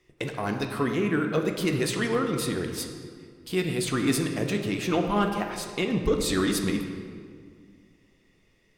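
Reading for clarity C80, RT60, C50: 7.0 dB, 2.0 s, 5.5 dB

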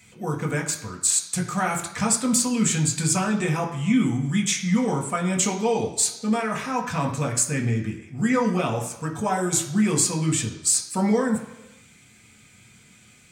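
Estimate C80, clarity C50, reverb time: 11.0 dB, 9.0 dB, 1.0 s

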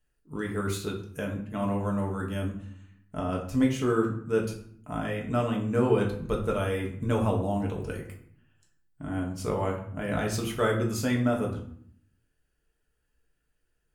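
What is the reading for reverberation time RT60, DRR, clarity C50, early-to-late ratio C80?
0.60 s, -1.0 dB, 8.0 dB, 11.5 dB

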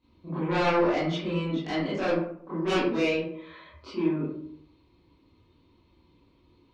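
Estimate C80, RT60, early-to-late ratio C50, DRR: 5.5 dB, 0.65 s, 0.0 dB, -12.5 dB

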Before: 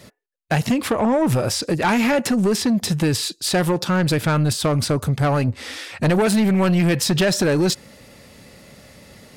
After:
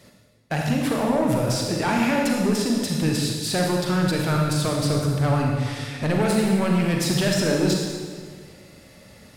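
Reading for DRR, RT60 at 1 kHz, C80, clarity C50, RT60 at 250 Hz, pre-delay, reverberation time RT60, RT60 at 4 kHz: -0.5 dB, 1.7 s, 2.5 dB, 1.0 dB, 1.9 s, 35 ms, 1.7 s, 1.5 s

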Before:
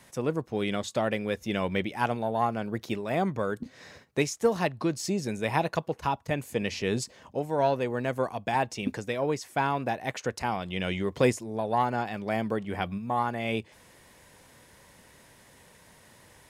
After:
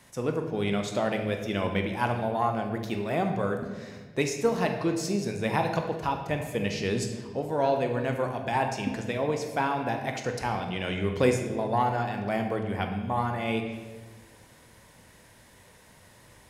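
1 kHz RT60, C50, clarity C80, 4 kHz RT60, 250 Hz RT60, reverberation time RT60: 1.2 s, 6.0 dB, 8.0 dB, 1.0 s, 2.1 s, 1.4 s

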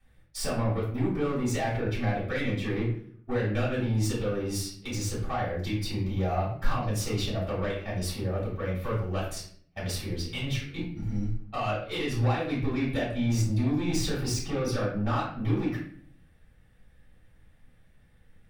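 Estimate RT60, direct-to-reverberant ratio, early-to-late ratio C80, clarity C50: 0.55 s, -8.5 dB, 8.0 dB, 3.5 dB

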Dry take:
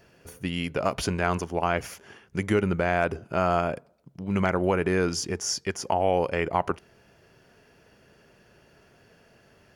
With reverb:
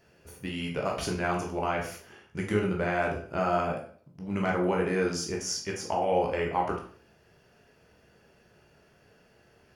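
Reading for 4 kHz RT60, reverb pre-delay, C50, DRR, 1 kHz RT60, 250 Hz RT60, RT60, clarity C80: 0.40 s, 12 ms, 7.0 dB, -1.0 dB, 0.45 s, 0.50 s, 0.50 s, 11.5 dB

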